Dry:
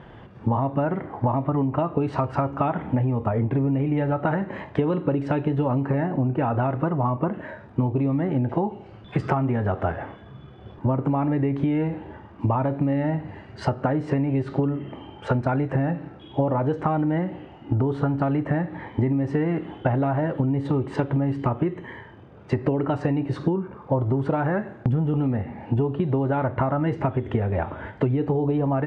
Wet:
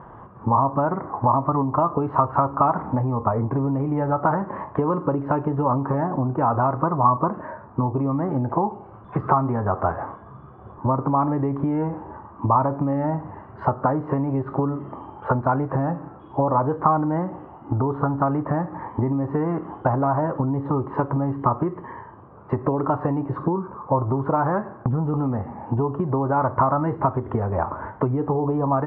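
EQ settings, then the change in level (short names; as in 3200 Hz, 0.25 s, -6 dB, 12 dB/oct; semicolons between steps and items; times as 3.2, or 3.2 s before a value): synth low-pass 1100 Hz, resonance Q 4.7; -1.0 dB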